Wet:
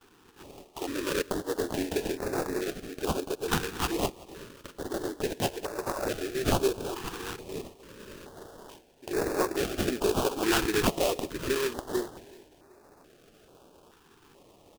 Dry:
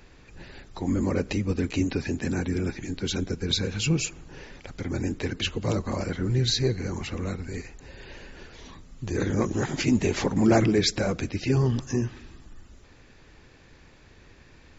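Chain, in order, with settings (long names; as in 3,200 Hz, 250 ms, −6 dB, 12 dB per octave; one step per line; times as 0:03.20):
low-pass that shuts in the quiet parts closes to 1,600 Hz, open at −20.5 dBFS
noise gate with hold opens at −48 dBFS
inverse Chebyshev high-pass filter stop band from 190 Hz, stop band 40 dB
notch filter 500 Hz, Q 12
in parallel at +0.5 dB: brickwall limiter −22 dBFS, peak gain reduction 11.5 dB
0:05.53–0:06.12: on the sum: compressor whose output falls as the input rises −30 dBFS, ratio −0.5
sample-rate reduction 2,100 Hz, jitter 20%
0:01.62–0:02.54: double-tracking delay 26 ms −9 dB
on a send: repeating echo 378 ms, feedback 44%, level −23 dB
on the sum: notch on a step sequencer 2.3 Hz 600–3,100 Hz
level −1 dB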